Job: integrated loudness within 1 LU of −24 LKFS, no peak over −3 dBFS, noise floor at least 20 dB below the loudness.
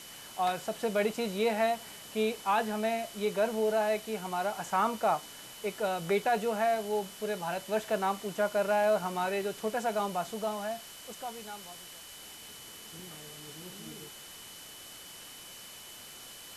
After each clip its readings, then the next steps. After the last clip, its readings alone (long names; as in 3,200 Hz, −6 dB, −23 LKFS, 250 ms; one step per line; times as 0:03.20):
interfering tone 3,000 Hz; level of the tone −52 dBFS; background noise floor −48 dBFS; target noise floor −52 dBFS; integrated loudness −31.5 LKFS; sample peak −17.5 dBFS; target loudness −24.0 LKFS
→ notch filter 3,000 Hz, Q 30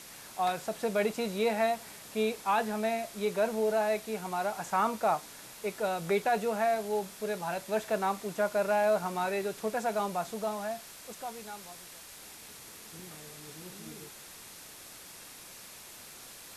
interfering tone none found; background noise floor −49 dBFS; target noise floor −52 dBFS
→ broadband denoise 6 dB, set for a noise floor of −49 dBFS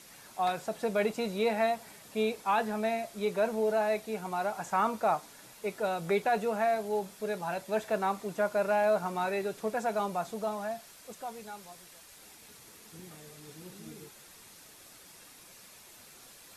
background noise floor −54 dBFS; integrated loudness −31.5 LKFS; sample peak −18.0 dBFS; target loudness −24.0 LKFS
→ level +7.5 dB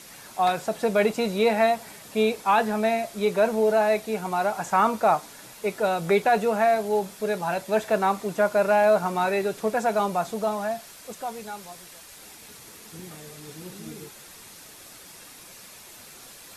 integrated loudness −24.0 LKFS; sample peak −10.5 dBFS; background noise floor −46 dBFS